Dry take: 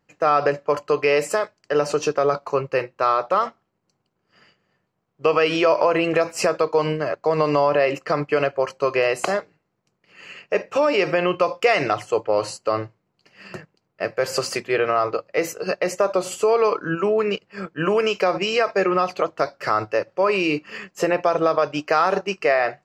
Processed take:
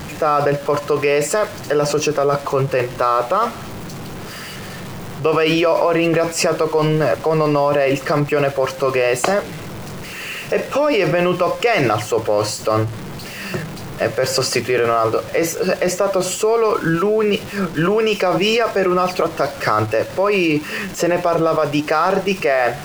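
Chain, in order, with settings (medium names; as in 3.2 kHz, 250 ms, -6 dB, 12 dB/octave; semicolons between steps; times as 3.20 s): jump at every zero crossing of -33 dBFS; bass shelf 220 Hz +7 dB; in parallel at -2 dB: compressor with a negative ratio -21 dBFS, ratio -0.5; on the sum: trim -1 dB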